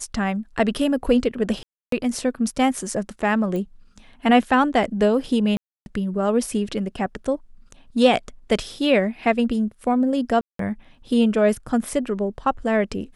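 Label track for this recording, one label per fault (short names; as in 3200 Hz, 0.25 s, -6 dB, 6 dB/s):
1.630000	1.920000	gap 0.293 s
3.560000	3.560000	pop -18 dBFS
5.570000	5.860000	gap 0.291 s
10.410000	10.590000	gap 0.183 s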